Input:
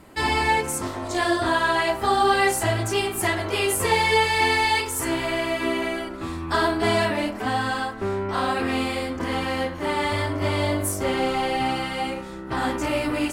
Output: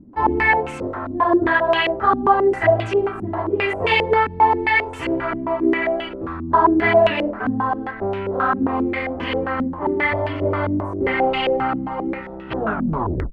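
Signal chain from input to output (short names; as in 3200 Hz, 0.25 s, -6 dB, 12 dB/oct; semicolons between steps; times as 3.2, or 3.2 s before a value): tape stop at the end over 0.77 s; stepped low-pass 7.5 Hz 250–2800 Hz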